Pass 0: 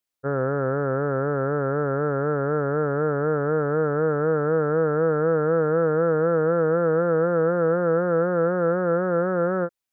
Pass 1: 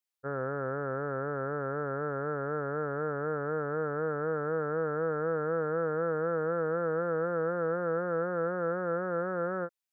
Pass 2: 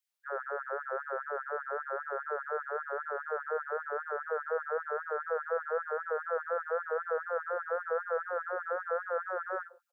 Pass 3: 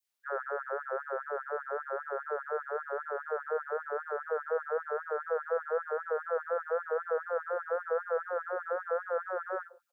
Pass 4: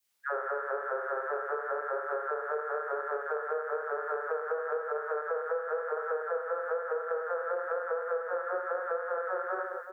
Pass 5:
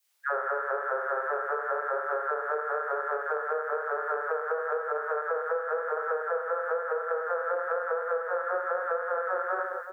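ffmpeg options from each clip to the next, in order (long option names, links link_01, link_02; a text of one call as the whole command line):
ffmpeg -i in.wav -af "tiltshelf=frequency=720:gain=-3.5,volume=-8.5dB" out.wav
ffmpeg -i in.wav -filter_complex "[0:a]asplit=2[link_01][link_02];[link_02]adelay=62,lowpass=frequency=1100:poles=1,volume=-19dB,asplit=2[link_03][link_04];[link_04]adelay=62,lowpass=frequency=1100:poles=1,volume=0.55,asplit=2[link_05][link_06];[link_06]adelay=62,lowpass=frequency=1100:poles=1,volume=0.55,asplit=2[link_07][link_08];[link_08]adelay=62,lowpass=frequency=1100:poles=1,volume=0.55,asplit=2[link_09][link_10];[link_10]adelay=62,lowpass=frequency=1100:poles=1,volume=0.55[link_11];[link_01][link_03][link_05][link_07][link_09][link_11]amix=inputs=6:normalize=0,afftfilt=real='re*gte(b*sr/1024,360*pow(1600/360,0.5+0.5*sin(2*PI*5*pts/sr)))':imag='im*gte(b*sr/1024,360*pow(1600/360,0.5+0.5*sin(2*PI*5*pts/sr)))':win_size=1024:overlap=0.75,volume=1.5dB" out.wav
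ffmpeg -i in.wav -af "adynamicequalizer=threshold=0.00355:dfrequency=1600:dqfactor=1.1:tfrequency=1600:tqfactor=1.1:attack=5:release=100:ratio=0.375:range=2:mode=cutabove:tftype=bell,volume=2dB" out.wav
ffmpeg -i in.wav -filter_complex "[0:a]asplit=2[link_01][link_02];[link_02]aecho=0:1:40|104|206.4|370.2|632.4:0.631|0.398|0.251|0.158|0.1[link_03];[link_01][link_03]amix=inputs=2:normalize=0,acompressor=threshold=-37dB:ratio=6,volume=7dB" out.wav
ffmpeg -i in.wav -af "highpass=460,volume=4.5dB" out.wav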